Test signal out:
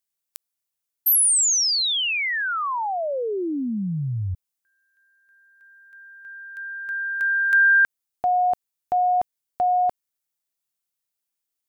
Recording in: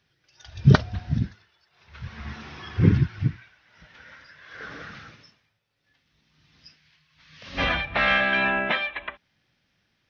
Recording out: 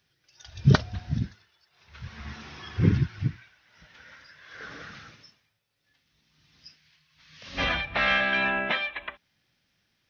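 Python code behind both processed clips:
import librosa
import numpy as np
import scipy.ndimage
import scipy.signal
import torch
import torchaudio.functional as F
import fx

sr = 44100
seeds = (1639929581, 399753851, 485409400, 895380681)

y = fx.high_shelf(x, sr, hz=5500.0, db=10.0)
y = F.gain(torch.from_numpy(y), -3.5).numpy()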